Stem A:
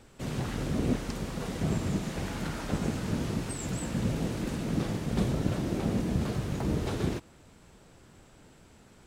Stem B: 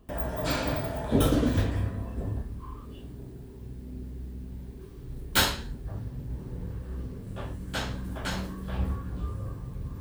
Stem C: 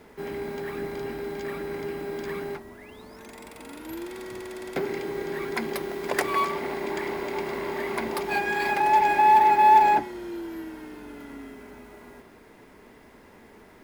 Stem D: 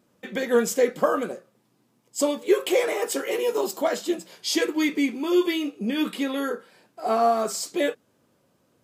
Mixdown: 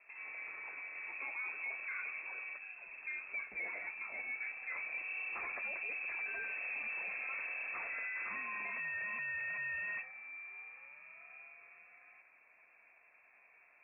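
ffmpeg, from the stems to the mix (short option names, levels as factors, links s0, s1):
-filter_complex "[0:a]acompressor=threshold=0.0316:ratio=6,adelay=750,volume=0.119,asplit=3[s0][s1][s2];[s0]atrim=end=3.38,asetpts=PTS-STARTPTS,afade=t=out:st=3.376:d=0.004:c=hsin[s3];[s1]atrim=start=3.38:end=4.34,asetpts=PTS-STARTPTS,volume=0[s4];[s2]atrim=start=4.34,asetpts=PTS-STARTPTS,afade=t=in:d=0.004:c=hsin[s5];[s3][s4][s5]concat=n=3:v=0:a=1[s6];[1:a]acompressor=threshold=0.0158:ratio=6,volume=0.708,afade=t=in:st=4.63:d=0.48:silence=0.298538[s7];[2:a]asoftclip=type=tanh:threshold=0.075,volume=0.2[s8];[3:a]adelay=850,volume=0.133[s9];[s6][s7][s8][s9]amix=inputs=4:normalize=0,lowpass=f=2300:t=q:w=0.5098,lowpass=f=2300:t=q:w=0.6013,lowpass=f=2300:t=q:w=0.9,lowpass=f=2300:t=q:w=2.563,afreqshift=-2700,equalizer=f=120:w=1.9:g=-6.5,alimiter=level_in=2.99:limit=0.0631:level=0:latency=1:release=10,volume=0.335"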